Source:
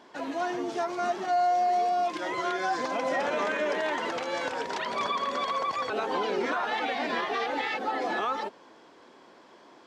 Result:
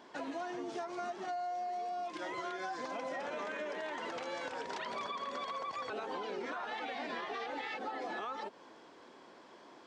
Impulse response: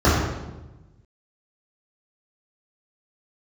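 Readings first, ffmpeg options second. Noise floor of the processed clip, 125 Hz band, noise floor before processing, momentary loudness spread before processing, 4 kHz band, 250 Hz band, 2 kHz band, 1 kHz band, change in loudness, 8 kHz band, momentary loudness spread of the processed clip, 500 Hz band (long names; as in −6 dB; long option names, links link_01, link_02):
−57 dBFS, −10.0 dB, −54 dBFS, 6 LU, −10.0 dB, −9.5 dB, −10.5 dB, −11.5 dB, −11.0 dB, −10.0 dB, 14 LU, −11.0 dB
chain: -af "aresample=22050,aresample=44100,acompressor=threshold=-35dB:ratio=6,volume=-2.5dB"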